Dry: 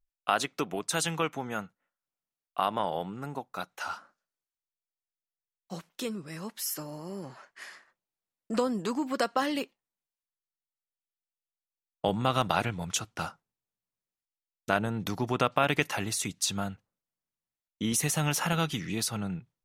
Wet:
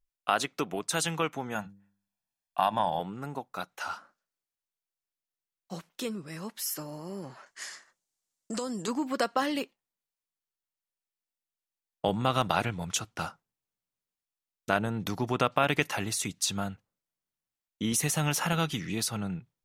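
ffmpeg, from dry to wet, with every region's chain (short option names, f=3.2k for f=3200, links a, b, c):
-filter_complex "[0:a]asettb=1/sr,asplit=3[a][b][c];[a]atrim=end=1.554[d];[b]atrim=start=1.55:end=3,asetpts=PTS-STARTPTS,afade=t=in:d=0.004:c=qsin,afade=t=out:st=1.446:d=0.004:c=qsin,aecho=1:1:1.2:0.69,atrim=end_sample=63945,bandreject=f=99.58:t=h:w=4,bandreject=f=199.16:t=h:w=4,bandreject=f=298.74:t=h:w=4,bandreject=f=398.32:t=h:w=4,bandreject=f=497.9:t=h:w=4[e];[c]atrim=start=2.996[f];[d][e]acrossfade=d=0.004:c1=hsin:c2=qsin[g];[g][f]acrossfade=d=0.004:c1=qsin:c2=hsin,asettb=1/sr,asplit=3[h][i][j];[h]atrim=end=7.464[k];[i]atrim=start=7.46:end=8.88,asetpts=PTS-STARTPTS,afade=t=in:d=0.004:c=qsin,afade=t=out:st=1.416:d=0.004:c=qsin,equalizer=f=7k:w=0.89:g=14,bandreject=f=2.5k:w=18,acompressor=threshold=-32dB:ratio=2.5:attack=3.2:release=140:knee=1:detection=peak[l];[j]atrim=start=8.876[m];[k][l]acrossfade=d=0.004:c1=hsin:c2=qsin[n];[n][m]acrossfade=d=0.004:c1=qsin:c2=hsin"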